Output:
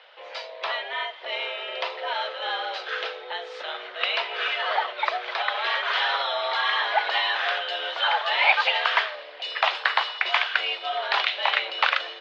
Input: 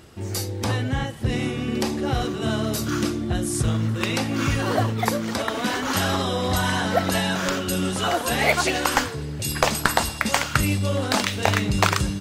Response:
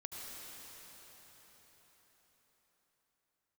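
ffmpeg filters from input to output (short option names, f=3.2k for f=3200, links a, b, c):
-af "asoftclip=type=tanh:threshold=-10dB,highpass=f=430:t=q:w=0.5412,highpass=f=430:t=q:w=1.307,lowpass=f=3.5k:t=q:w=0.5176,lowpass=f=3.5k:t=q:w=0.7071,lowpass=f=3.5k:t=q:w=1.932,afreqshift=150,highshelf=f=2.1k:g=10,volume=-1.5dB"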